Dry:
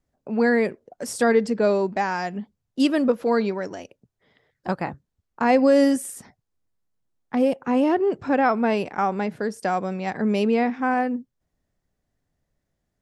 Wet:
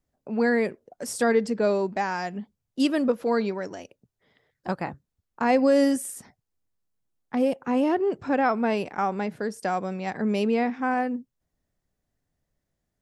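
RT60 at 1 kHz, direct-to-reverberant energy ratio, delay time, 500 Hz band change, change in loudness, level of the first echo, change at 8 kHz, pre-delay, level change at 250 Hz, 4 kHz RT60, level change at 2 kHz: no reverb audible, no reverb audible, no echo audible, −3.0 dB, −3.0 dB, no echo audible, −1.0 dB, no reverb audible, −3.0 dB, no reverb audible, −3.0 dB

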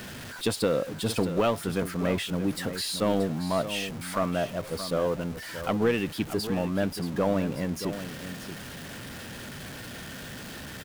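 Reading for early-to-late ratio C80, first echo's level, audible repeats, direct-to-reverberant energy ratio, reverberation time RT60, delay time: no reverb audible, −11.0 dB, 1, no reverb audible, no reverb audible, 629 ms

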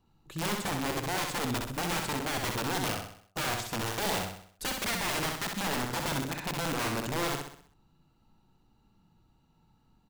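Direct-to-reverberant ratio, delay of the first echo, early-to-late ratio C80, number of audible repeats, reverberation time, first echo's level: no reverb audible, 64 ms, no reverb audible, 5, no reverb audible, −4.0 dB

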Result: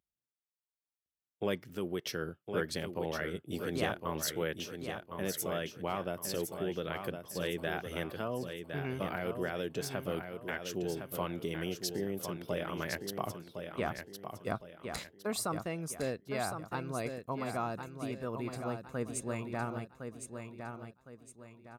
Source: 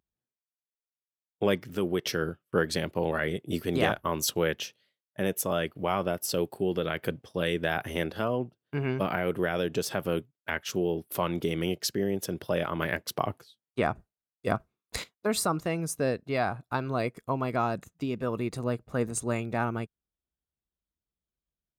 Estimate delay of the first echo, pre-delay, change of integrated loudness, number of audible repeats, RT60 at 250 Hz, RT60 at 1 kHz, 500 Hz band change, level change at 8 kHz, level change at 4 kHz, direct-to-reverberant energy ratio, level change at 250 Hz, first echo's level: 1,060 ms, no reverb audible, −7.0 dB, 4, no reverb audible, no reverb audible, −7.0 dB, −5.5 dB, −6.5 dB, no reverb audible, −7.0 dB, −7.0 dB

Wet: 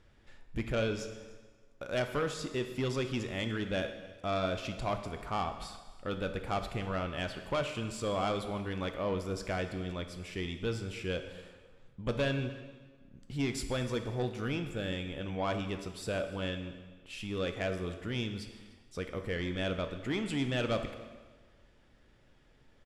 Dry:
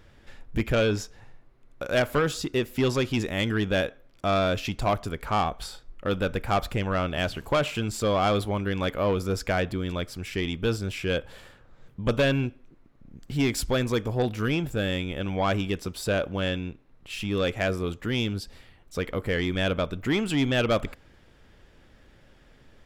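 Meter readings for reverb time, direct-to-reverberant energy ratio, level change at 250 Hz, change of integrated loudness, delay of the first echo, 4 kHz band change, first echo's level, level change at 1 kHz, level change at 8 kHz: 1.4 s, 7.0 dB, −8.0 dB, −8.5 dB, 297 ms, −8.0 dB, −23.0 dB, −8.5 dB, −8.5 dB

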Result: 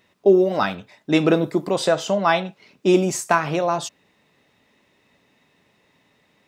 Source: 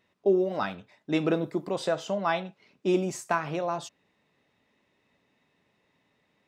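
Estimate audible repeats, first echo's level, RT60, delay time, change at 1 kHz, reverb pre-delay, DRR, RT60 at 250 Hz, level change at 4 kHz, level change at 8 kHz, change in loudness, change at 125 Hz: no echo audible, no echo audible, no reverb audible, no echo audible, +8.5 dB, no reverb audible, no reverb audible, no reverb audible, +10.5 dB, +12.0 dB, +8.5 dB, +8.5 dB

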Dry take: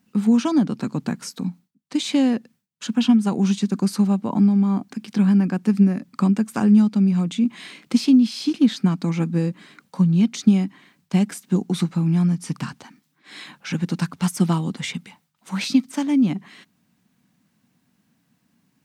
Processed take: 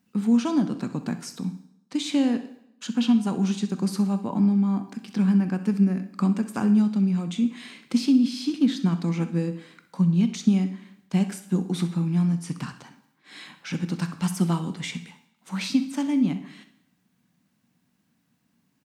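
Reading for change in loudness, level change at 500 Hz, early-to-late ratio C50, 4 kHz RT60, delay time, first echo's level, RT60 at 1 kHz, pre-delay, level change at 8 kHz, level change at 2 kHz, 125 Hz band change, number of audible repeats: −4.0 dB, −4.0 dB, 11.0 dB, 0.70 s, 64 ms, −15.5 dB, 0.80 s, 7 ms, −4.0 dB, −4.0 dB, −4.0 dB, 1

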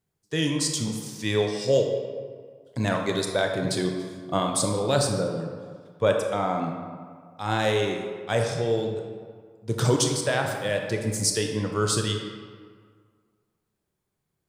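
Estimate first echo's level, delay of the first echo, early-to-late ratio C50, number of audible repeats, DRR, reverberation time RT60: no echo audible, no echo audible, 4.0 dB, no echo audible, 2.5 dB, 1.9 s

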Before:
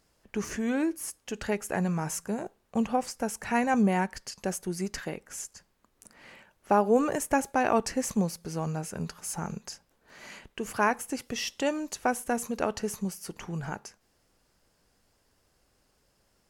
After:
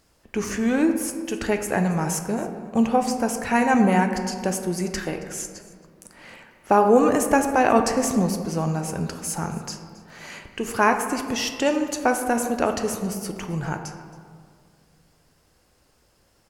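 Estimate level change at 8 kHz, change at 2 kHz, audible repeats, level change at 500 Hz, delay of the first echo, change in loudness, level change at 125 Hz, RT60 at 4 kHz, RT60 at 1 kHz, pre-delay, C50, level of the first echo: +6.5 dB, +7.0 dB, 1, +7.5 dB, 273 ms, +7.0 dB, +6.5 dB, 0.95 s, 1.9 s, 4 ms, 7.5 dB, −20.5 dB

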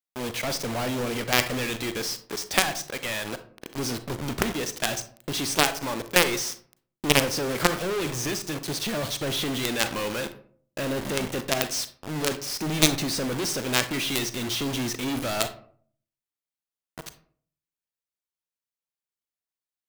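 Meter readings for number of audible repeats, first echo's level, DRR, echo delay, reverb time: no echo audible, no echo audible, 10.5 dB, no echo audible, 0.55 s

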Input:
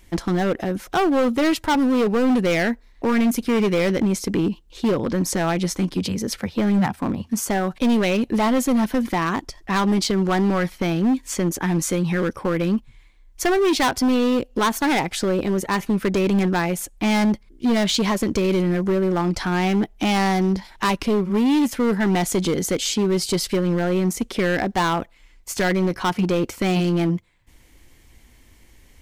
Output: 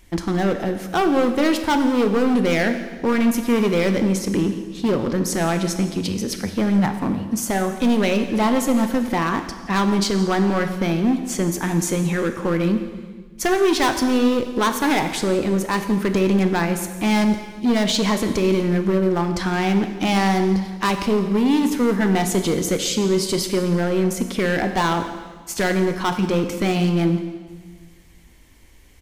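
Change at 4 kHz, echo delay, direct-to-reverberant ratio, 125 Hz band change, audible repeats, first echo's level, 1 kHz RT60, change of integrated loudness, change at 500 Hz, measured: +0.5 dB, 169 ms, 7.0 dB, +1.0 dB, 1, −19.5 dB, 1.4 s, +1.0 dB, +1.0 dB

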